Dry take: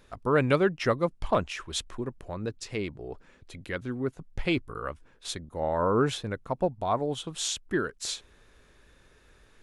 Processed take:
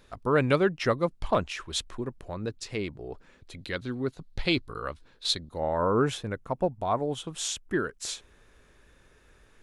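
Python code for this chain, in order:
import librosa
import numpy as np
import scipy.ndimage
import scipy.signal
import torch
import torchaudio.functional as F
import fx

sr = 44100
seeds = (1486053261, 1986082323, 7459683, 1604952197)

y = fx.peak_eq(x, sr, hz=4100.0, db=fx.steps((0.0, 2.5), (3.59, 13.5), (5.58, -3.5)), octaves=0.53)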